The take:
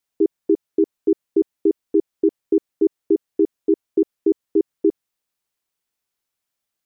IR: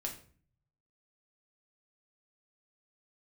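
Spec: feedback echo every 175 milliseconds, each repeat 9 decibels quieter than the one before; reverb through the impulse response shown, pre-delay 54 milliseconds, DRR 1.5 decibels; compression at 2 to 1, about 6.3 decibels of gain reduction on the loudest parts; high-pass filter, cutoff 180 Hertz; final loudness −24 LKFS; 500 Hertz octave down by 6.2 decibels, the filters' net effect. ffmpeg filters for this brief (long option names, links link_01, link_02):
-filter_complex "[0:a]highpass=180,equalizer=frequency=500:width_type=o:gain=-9,acompressor=threshold=-29dB:ratio=2,aecho=1:1:175|350|525|700:0.355|0.124|0.0435|0.0152,asplit=2[link_01][link_02];[1:a]atrim=start_sample=2205,adelay=54[link_03];[link_02][link_03]afir=irnorm=-1:irlink=0,volume=-1.5dB[link_04];[link_01][link_04]amix=inputs=2:normalize=0,volume=6dB"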